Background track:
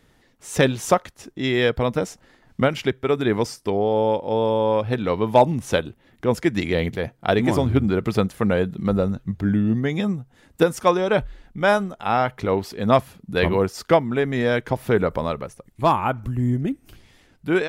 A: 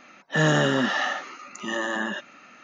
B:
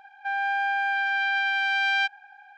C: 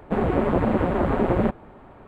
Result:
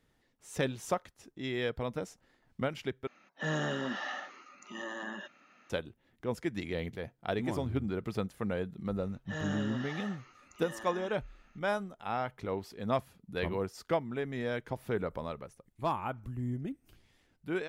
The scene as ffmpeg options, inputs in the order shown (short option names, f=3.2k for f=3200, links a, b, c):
-filter_complex "[1:a]asplit=2[a][b];[0:a]volume=-14dB[c];[a]highshelf=f=5.9k:g=-4[d];[c]asplit=2[e][f];[e]atrim=end=3.074[g];[d]atrim=end=2.63,asetpts=PTS-STARTPTS,volume=-12.5dB[h];[f]atrim=start=5.696[i];[b]atrim=end=2.63,asetpts=PTS-STARTPTS,volume=-18dB,afade=t=in:d=0.004:c=hsin,afade=t=out:st=2.626:d=0.004:c=hsin,adelay=8960[j];[g][h]acrossfade=d=0.004:c1=hsin:c2=hsin[k];[k][i]acrossfade=d=0.004:c1=hsin:c2=hsin[l];[l][j]amix=inputs=2:normalize=0"